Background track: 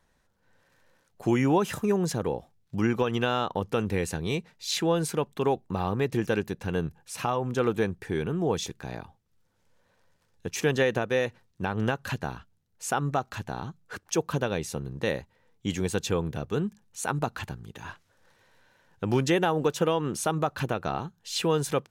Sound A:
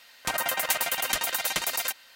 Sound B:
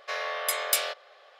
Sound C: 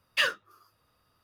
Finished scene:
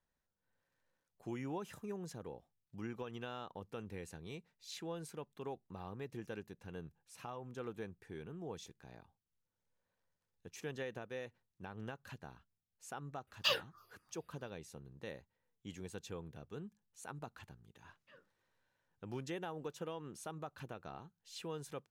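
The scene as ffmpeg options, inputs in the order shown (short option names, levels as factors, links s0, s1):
-filter_complex "[3:a]asplit=2[s0][s1];[0:a]volume=0.112[s2];[s0]asplit=2[s3][s4];[s4]afreqshift=-3[s5];[s3][s5]amix=inputs=2:normalize=1[s6];[s1]bandpass=f=170:t=q:w=1.2:csg=0[s7];[s6]atrim=end=1.23,asetpts=PTS-STARTPTS,volume=0.794,afade=t=in:d=0.004:c=hsin,afade=t=out:st=1.226:d=0.004:c=hsin,adelay=13270[s8];[s7]atrim=end=1.23,asetpts=PTS-STARTPTS,volume=0.133,afade=t=in:d=0.004:c=hsin,afade=t=out:st=1.226:d=0.004:c=hsin,adelay=17900[s9];[s2][s8][s9]amix=inputs=3:normalize=0"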